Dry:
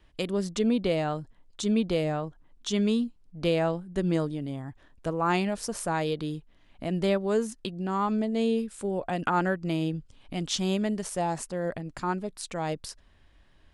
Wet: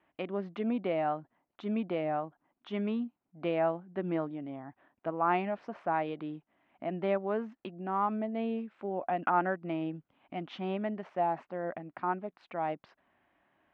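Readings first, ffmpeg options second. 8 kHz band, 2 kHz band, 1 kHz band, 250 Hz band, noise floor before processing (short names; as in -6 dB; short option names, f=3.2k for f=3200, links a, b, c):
under -40 dB, -4.5 dB, -0.5 dB, -7.0 dB, -59 dBFS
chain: -af "highpass=270,equalizer=f=460:t=q:w=4:g=-8,equalizer=f=730:t=q:w=4:g=5,equalizer=f=1.7k:t=q:w=4:g=-3,lowpass=f=2.3k:w=0.5412,lowpass=f=2.3k:w=1.3066,volume=-2dB"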